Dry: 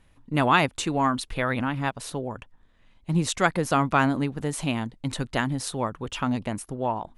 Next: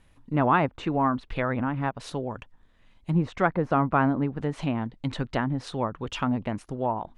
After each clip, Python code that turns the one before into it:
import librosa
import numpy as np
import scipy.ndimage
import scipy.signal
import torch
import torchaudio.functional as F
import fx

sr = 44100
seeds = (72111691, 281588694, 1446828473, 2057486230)

y = fx.env_lowpass_down(x, sr, base_hz=1400.0, full_db=-22.0)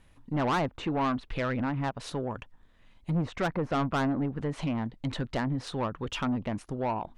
y = 10.0 ** (-23.0 / 20.0) * np.tanh(x / 10.0 ** (-23.0 / 20.0))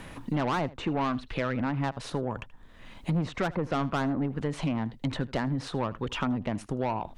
y = x + 10.0 ** (-21.0 / 20.0) * np.pad(x, (int(79 * sr / 1000.0), 0))[:len(x)]
y = fx.band_squash(y, sr, depth_pct=70)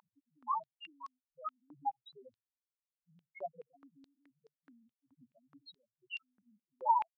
y = fx.vibrato(x, sr, rate_hz=1.3, depth_cents=20.0)
y = fx.spec_topn(y, sr, count=1)
y = fx.filter_held_highpass(y, sr, hz=4.7, low_hz=960.0, high_hz=5100.0)
y = y * 10.0 ** (4.0 / 20.0)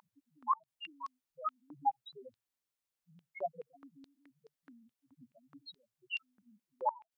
y = fx.gate_flip(x, sr, shuts_db=-25.0, range_db=-28)
y = y * 10.0 ** (4.5 / 20.0)